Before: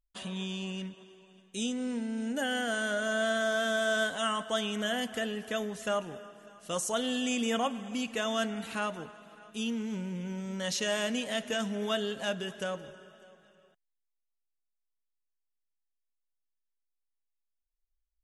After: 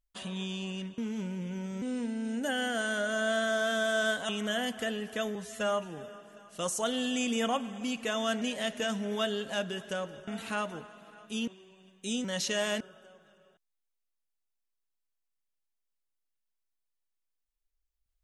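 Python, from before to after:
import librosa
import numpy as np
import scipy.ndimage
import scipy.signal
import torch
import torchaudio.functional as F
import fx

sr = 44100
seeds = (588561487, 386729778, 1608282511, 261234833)

y = fx.edit(x, sr, fx.swap(start_s=0.98, length_s=0.77, other_s=9.72, other_length_s=0.84),
    fx.cut(start_s=4.22, length_s=0.42),
    fx.stretch_span(start_s=5.7, length_s=0.49, factor=1.5),
    fx.move(start_s=11.12, length_s=1.86, to_s=8.52), tone=tone)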